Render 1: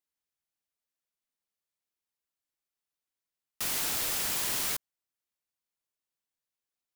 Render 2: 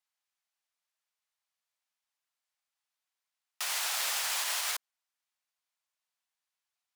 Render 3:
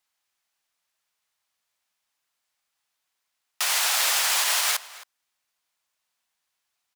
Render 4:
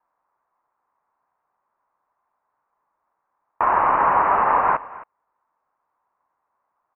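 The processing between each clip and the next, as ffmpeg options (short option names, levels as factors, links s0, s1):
-af "highpass=f=680:w=0.5412,highpass=f=680:w=1.3066,highshelf=f=11000:g=-12,alimiter=level_in=1.41:limit=0.0631:level=0:latency=1:release=84,volume=0.708,volume=1.78"
-filter_complex "[0:a]acontrast=76,asplit=2[s0][s1];[s1]adelay=268.2,volume=0.141,highshelf=f=4000:g=-6.04[s2];[s0][s2]amix=inputs=2:normalize=0,volume=1.33"
-af "highpass=f=2700:t=q:w=10,lowpass=f=3100:t=q:w=0.5098,lowpass=f=3100:t=q:w=0.6013,lowpass=f=3100:t=q:w=0.9,lowpass=f=3100:t=q:w=2.563,afreqshift=-3700"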